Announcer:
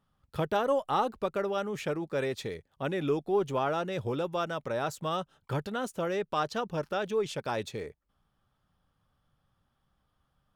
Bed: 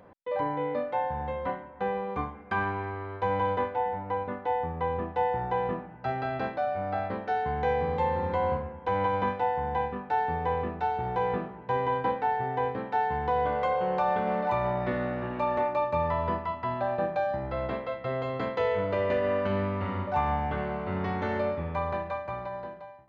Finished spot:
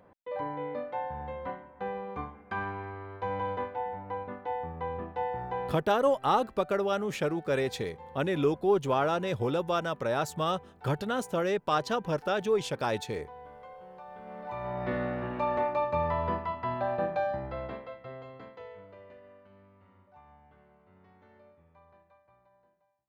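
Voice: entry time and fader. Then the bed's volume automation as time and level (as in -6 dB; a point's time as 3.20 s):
5.35 s, +2.5 dB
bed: 5.68 s -5.5 dB
5.90 s -21 dB
14.09 s -21 dB
14.93 s -1.5 dB
17.27 s -1.5 dB
19.46 s -29.5 dB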